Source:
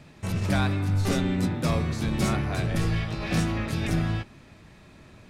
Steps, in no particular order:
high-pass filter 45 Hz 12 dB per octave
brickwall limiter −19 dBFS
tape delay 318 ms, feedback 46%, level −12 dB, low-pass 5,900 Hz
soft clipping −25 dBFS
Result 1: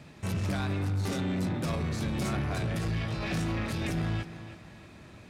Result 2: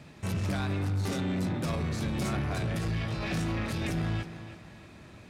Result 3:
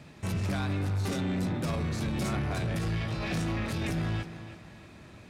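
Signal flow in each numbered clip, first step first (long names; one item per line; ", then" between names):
brickwall limiter, then tape delay, then soft clipping, then high-pass filter
tape delay, then brickwall limiter, then soft clipping, then high-pass filter
tape delay, then brickwall limiter, then high-pass filter, then soft clipping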